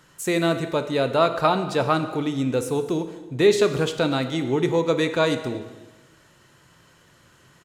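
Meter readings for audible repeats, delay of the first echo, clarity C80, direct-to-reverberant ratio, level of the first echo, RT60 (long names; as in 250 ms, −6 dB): 1, 241 ms, 11.5 dB, 8.0 dB, −22.0 dB, 1.2 s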